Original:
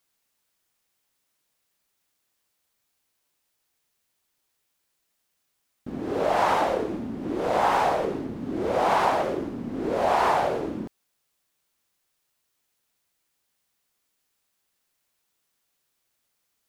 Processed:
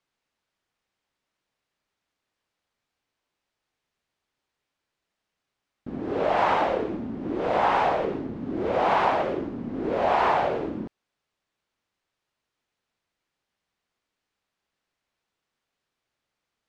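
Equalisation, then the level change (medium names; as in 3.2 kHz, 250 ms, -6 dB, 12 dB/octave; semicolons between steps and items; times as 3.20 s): dynamic bell 2.7 kHz, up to +4 dB, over -43 dBFS, Q 1.1; distance through air 57 m; treble shelf 5.7 kHz -11.5 dB; 0.0 dB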